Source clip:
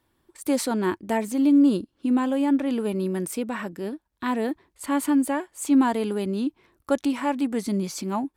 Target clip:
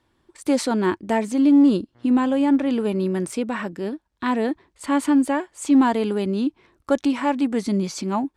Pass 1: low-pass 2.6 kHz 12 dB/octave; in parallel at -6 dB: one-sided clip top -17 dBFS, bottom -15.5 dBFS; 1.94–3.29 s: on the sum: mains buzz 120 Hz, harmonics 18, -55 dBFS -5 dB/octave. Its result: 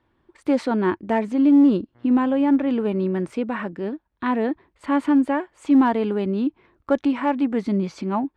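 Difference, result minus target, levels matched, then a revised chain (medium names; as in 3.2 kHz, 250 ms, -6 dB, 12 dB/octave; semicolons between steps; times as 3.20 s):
8 kHz band -16.5 dB
low-pass 7.4 kHz 12 dB/octave; in parallel at -6 dB: one-sided clip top -17 dBFS, bottom -15.5 dBFS; 1.94–3.29 s: on the sum: mains buzz 120 Hz, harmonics 18, -55 dBFS -5 dB/octave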